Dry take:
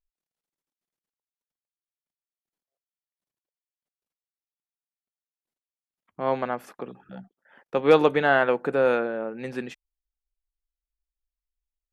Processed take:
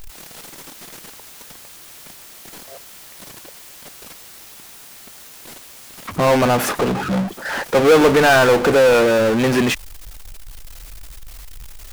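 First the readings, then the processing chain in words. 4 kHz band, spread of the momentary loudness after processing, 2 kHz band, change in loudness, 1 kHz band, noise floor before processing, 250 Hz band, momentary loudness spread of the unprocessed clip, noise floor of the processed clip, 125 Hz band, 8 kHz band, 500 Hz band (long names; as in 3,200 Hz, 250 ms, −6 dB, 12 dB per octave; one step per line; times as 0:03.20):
+15.5 dB, 12 LU, +9.5 dB, +8.0 dB, +8.5 dB, below −85 dBFS, +11.5 dB, 20 LU, −41 dBFS, +14.5 dB, can't be measured, +9.0 dB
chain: power curve on the samples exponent 0.35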